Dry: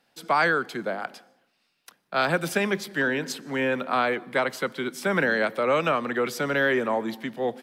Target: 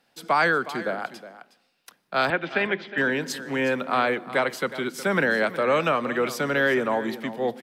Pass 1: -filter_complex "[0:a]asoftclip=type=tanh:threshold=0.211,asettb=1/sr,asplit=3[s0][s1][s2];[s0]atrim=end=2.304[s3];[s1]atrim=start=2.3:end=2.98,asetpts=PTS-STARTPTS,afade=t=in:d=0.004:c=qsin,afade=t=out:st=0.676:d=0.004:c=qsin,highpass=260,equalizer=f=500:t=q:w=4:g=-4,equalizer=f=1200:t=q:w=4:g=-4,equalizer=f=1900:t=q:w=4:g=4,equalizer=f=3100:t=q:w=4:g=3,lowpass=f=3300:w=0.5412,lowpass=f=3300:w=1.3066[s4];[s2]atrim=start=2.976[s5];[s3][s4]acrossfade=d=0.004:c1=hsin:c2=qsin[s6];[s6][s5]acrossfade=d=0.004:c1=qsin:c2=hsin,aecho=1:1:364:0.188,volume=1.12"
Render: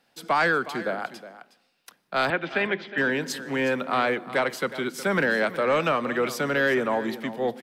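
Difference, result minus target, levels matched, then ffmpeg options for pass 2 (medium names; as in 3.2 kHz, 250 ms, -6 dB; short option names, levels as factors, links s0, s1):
saturation: distortion +20 dB
-filter_complex "[0:a]asoftclip=type=tanh:threshold=0.75,asettb=1/sr,asplit=3[s0][s1][s2];[s0]atrim=end=2.304[s3];[s1]atrim=start=2.3:end=2.98,asetpts=PTS-STARTPTS,afade=t=in:d=0.004:c=qsin,afade=t=out:st=0.676:d=0.004:c=qsin,highpass=260,equalizer=f=500:t=q:w=4:g=-4,equalizer=f=1200:t=q:w=4:g=-4,equalizer=f=1900:t=q:w=4:g=4,equalizer=f=3100:t=q:w=4:g=3,lowpass=f=3300:w=0.5412,lowpass=f=3300:w=1.3066[s4];[s2]atrim=start=2.976[s5];[s3][s4]acrossfade=d=0.004:c1=hsin:c2=qsin[s6];[s6][s5]acrossfade=d=0.004:c1=qsin:c2=hsin,aecho=1:1:364:0.188,volume=1.12"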